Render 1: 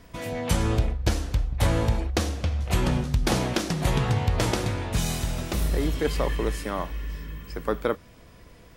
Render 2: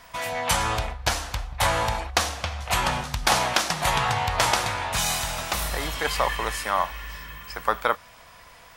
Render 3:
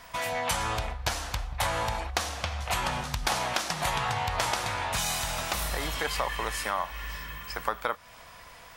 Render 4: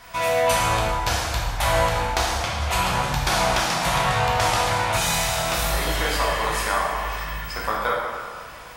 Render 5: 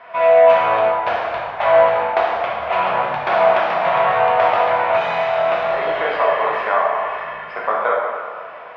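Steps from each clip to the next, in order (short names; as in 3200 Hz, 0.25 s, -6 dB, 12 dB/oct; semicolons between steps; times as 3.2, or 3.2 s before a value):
resonant low shelf 550 Hz -14 dB, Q 1.5; gain +7 dB
compressor 2.5:1, threshold -28 dBFS, peak gain reduction 8.5 dB
plate-style reverb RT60 1.8 s, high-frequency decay 0.65×, DRR -5 dB; gain +1.5 dB
speaker cabinet 290–2600 Hz, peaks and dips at 290 Hz -6 dB, 430 Hz +4 dB, 650 Hz +10 dB, 1100 Hz +3 dB; gain +2.5 dB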